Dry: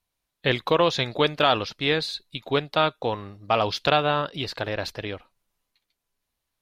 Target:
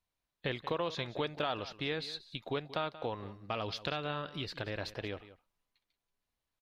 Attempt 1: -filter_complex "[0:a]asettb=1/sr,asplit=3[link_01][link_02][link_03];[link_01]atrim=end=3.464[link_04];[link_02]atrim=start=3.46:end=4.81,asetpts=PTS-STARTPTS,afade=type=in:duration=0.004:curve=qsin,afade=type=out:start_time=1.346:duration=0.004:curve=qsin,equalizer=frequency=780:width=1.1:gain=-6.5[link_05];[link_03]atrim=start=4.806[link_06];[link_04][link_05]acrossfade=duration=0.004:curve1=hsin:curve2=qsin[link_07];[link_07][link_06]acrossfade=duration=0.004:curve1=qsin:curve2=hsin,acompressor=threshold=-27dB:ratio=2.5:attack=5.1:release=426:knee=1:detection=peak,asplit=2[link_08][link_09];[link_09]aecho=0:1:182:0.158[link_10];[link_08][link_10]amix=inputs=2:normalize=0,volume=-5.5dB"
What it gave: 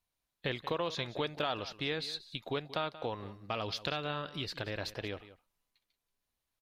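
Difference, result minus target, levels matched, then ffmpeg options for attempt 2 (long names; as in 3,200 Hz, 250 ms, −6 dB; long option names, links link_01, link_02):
8,000 Hz band +3.5 dB
-filter_complex "[0:a]asettb=1/sr,asplit=3[link_01][link_02][link_03];[link_01]atrim=end=3.464[link_04];[link_02]atrim=start=3.46:end=4.81,asetpts=PTS-STARTPTS,afade=type=in:duration=0.004:curve=qsin,afade=type=out:start_time=1.346:duration=0.004:curve=qsin,equalizer=frequency=780:width=1.1:gain=-6.5[link_05];[link_03]atrim=start=4.806[link_06];[link_04][link_05]acrossfade=duration=0.004:curve1=hsin:curve2=qsin[link_07];[link_07][link_06]acrossfade=duration=0.004:curve1=qsin:curve2=hsin,acompressor=threshold=-27dB:ratio=2.5:attack=5.1:release=426:knee=1:detection=peak,highshelf=frequency=5900:gain=-8,asplit=2[link_08][link_09];[link_09]aecho=0:1:182:0.158[link_10];[link_08][link_10]amix=inputs=2:normalize=0,volume=-5.5dB"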